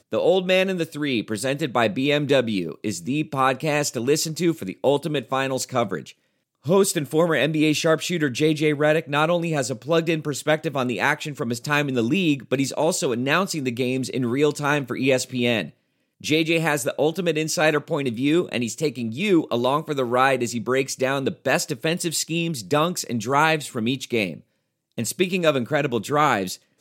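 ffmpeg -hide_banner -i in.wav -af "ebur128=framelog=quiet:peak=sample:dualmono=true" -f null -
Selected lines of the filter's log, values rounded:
Integrated loudness:
  I:         -19.3 LUFS
  Threshold: -29.5 LUFS
Loudness range:
  LRA:         2.1 LU
  Threshold: -39.6 LUFS
  LRA low:   -20.4 LUFS
  LRA high:  -18.3 LUFS
Sample peak:
  Peak:       -4.8 dBFS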